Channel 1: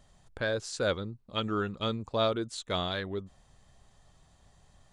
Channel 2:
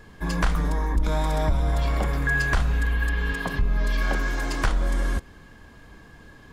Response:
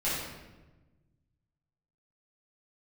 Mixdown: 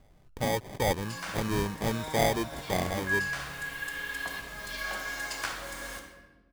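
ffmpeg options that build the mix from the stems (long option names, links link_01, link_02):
-filter_complex "[0:a]equalizer=frequency=4700:width=1.5:gain=-9,acrusher=samples=32:mix=1:aa=0.000001,volume=2dB,asplit=2[link_01][link_02];[1:a]highpass=frequency=1200:poles=1,highshelf=frequency=3900:gain=5.5,acrusher=bits=6:mix=0:aa=0.000001,adelay=800,volume=-7.5dB,asplit=2[link_03][link_04];[link_04]volume=-8dB[link_05];[link_02]apad=whole_len=323184[link_06];[link_03][link_06]sidechaincompress=threshold=-39dB:ratio=8:attack=16:release=628[link_07];[2:a]atrim=start_sample=2205[link_08];[link_05][link_08]afir=irnorm=-1:irlink=0[link_09];[link_01][link_07][link_09]amix=inputs=3:normalize=0"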